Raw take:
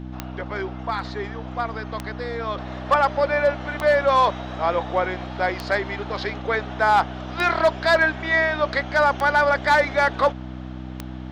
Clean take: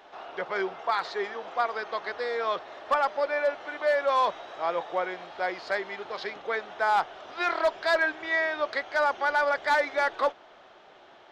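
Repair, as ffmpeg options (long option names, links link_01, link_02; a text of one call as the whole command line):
ffmpeg -i in.wav -af "adeclick=threshold=4,bandreject=frequency=63.2:width_type=h:width=4,bandreject=frequency=126.4:width_type=h:width=4,bandreject=frequency=189.6:width_type=h:width=4,bandreject=frequency=252.8:width_type=h:width=4,bandreject=frequency=316:width_type=h:width=4,asetnsamples=nb_out_samples=441:pad=0,asendcmd='2.58 volume volume -6.5dB',volume=0dB" out.wav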